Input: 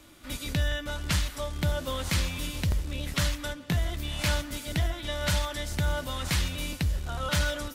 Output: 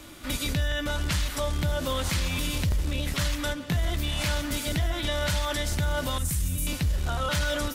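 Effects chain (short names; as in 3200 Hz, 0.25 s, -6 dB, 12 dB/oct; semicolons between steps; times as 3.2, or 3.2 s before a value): 6.18–6.67 EQ curve 140 Hz 0 dB, 750 Hz -16 dB, 4300 Hz -14 dB, 8800 Hz +6 dB; limiter -27 dBFS, peak gain reduction 10.5 dB; gain +8 dB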